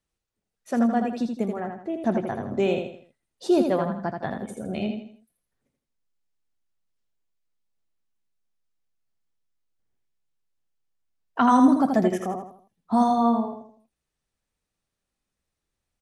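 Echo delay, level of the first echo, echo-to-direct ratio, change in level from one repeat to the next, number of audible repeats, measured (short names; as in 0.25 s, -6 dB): 81 ms, -5.5 dB, -5.0 dB, -8.5 dB, 4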